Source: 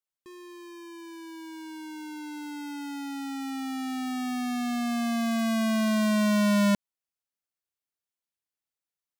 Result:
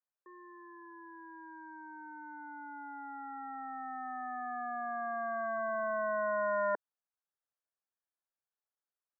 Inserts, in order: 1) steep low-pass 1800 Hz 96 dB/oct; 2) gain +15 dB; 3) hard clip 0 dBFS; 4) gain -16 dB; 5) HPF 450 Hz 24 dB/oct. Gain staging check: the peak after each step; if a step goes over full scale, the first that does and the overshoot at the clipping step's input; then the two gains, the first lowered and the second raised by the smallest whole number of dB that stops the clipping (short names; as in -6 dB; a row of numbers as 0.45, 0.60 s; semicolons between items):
-18.0, -3.0, -3.0, -19.0, -23.0 dBFS; no overload